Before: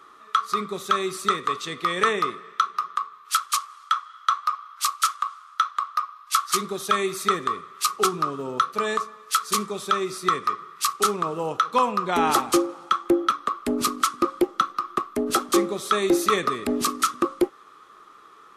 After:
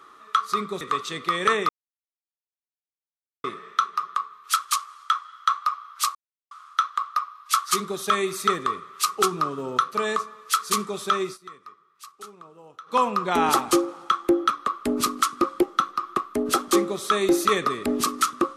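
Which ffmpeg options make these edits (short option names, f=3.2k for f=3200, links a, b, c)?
-filter_complex "[0:a]asplit=7[a][b][c][d][e][f][g];[a]atrim=end=0.812[h];[b]atrim=start=1.368:end=2.25,asetpts=PTS-STARTPTS,afade=t=out:st=0.878:d=0.004:c=hsin,apad=pad_dur=1.75[i];[c]atrim=start=2.25:end=4.96,asetpts=PTS-STARTPTS,afade=t=in:d=0.004:c=hsin,afade=t=out:st=2.706:d=0.004:c=hsin[j];[d]atrim=start=4.96:end=5.32,asetpts=PTS-STARTPTS,volume=0[k];[e]atrim=start=5.32:end=10.19,asetpts=PTS-STARTPTS,afade=t=in:d=0.004:c=hsin,afade=t=out:st=4.72:d=0.15:c=qsin:silence=0.0944061[l];[f]atrim=start=10.19:end=11.67,asetpts=PTS-STARTPTS,volume=-20.5dB[m];[g]atrim=start=11.67,asetpts=PTS-STARTPTS,afade=t=in:d=0.15:c=qsin:silence=0.0944061[n];[i][j][k][l][m][n]concat=n=6:v=0:a=1[o];[h][o]acrossfade=d=0.004:c1=hsin:c2=hsin"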